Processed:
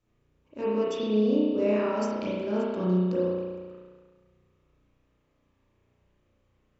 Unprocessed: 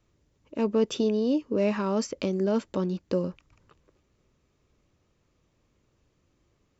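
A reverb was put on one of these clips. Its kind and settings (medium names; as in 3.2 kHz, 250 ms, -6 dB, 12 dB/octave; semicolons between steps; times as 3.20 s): spring tank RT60 1.5 s, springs 33 ms, chirp 75 ms, DRR -9 dB; trim -9 dB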